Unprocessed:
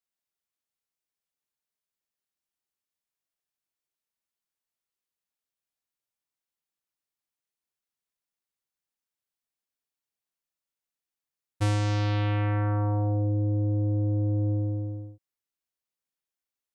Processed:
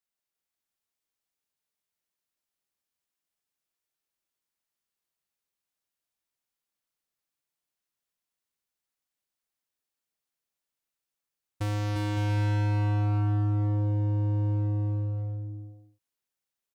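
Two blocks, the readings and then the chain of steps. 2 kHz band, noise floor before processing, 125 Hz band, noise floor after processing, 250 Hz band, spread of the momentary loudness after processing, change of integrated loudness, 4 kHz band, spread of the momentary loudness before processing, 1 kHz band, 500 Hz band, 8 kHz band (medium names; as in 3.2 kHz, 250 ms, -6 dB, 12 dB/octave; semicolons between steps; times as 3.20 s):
-1.5 dB, under -85 dBFS, 0.0 dB, under -85 dBFS, -2.5 dB, 9 LU, -1.0 dB, -3.0 dB, 5 LU, -2.0 dB, -5.0 dB, no reading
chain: overload inside the chain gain 24.5 dB; compression, threshold -29 dBFS, peak gain reduction 3.5 dB; bouncing-ball echo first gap 350 ms, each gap 0.6×, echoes 5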